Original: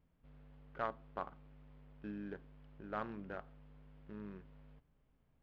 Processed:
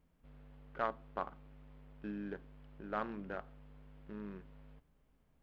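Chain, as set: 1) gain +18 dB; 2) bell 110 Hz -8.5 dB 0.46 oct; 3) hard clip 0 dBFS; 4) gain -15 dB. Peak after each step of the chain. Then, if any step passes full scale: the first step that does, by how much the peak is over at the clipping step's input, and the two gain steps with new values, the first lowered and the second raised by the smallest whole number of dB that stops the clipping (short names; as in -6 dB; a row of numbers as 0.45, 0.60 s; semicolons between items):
-4.5, -4.5, -4.5, -19.5 dBFS; no overload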